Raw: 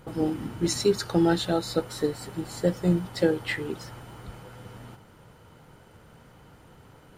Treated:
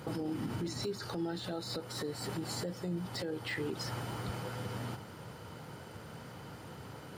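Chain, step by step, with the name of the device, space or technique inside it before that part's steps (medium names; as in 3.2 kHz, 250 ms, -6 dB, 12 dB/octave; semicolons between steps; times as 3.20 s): broadcast voice chain (high-pass 78 Hz 24 dB/octave; de-esser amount 95%; compression 4:1, threshold -35 dBFS, peak gain reduction 15.5 dB; peaking EQ 4.8 kHz +5.5 dB 0.36 oct; peak limiter -33.5 dBFS, peak gain reduction 12 dB); trim +5 dB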